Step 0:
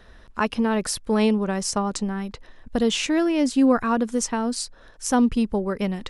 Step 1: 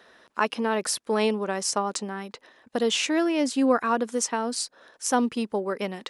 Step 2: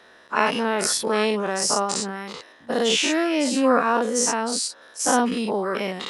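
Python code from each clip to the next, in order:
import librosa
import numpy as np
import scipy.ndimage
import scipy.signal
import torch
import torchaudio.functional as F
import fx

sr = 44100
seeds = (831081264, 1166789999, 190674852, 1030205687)

y1 = scipy.signal.sosfilt(scipy.signal.butter(2, 330.0, 'highpass', fs=sr, output='sos'), x)
y2 = fx.spec_dilate(y1, sr, span_ms=120)
y2 = F.gain(torch.from_numpy(y2), -1.0).numpy()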